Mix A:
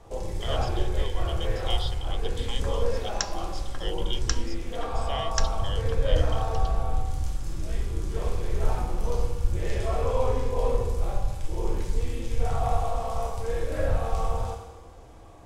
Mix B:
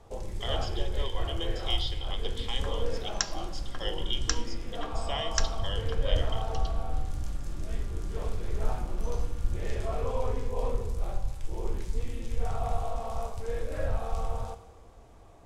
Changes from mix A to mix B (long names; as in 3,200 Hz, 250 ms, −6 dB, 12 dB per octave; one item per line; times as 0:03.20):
speech: send on
first sound: send −11.0 dB